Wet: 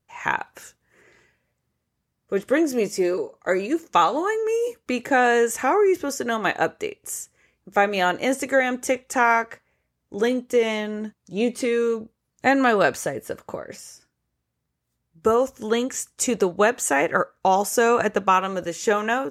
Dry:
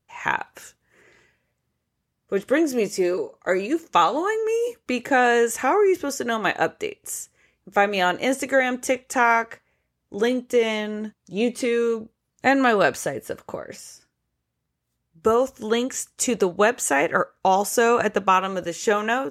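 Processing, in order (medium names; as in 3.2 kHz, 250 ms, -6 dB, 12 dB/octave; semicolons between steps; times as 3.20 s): peaking EQ 3.1 kHz -2 dB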